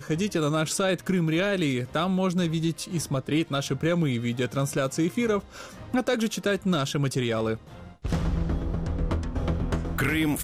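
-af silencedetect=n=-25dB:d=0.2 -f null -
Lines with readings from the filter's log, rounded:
silence_start: 5.39
silence_end: 5.94 | silence_duration: 0.55
silence_start: 7.54
silence_end: 8.05 | silence_duration: 0.51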